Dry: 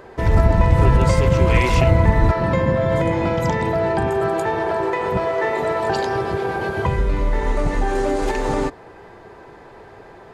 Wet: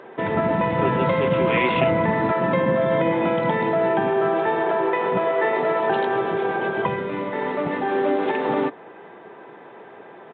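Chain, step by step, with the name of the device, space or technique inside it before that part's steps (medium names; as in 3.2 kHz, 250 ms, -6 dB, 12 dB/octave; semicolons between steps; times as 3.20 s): Bluetooth headset (high-pass 170 Hz 24 dB/octave; resampled via 8 kHz; SBC 64 kbps 16 kHz)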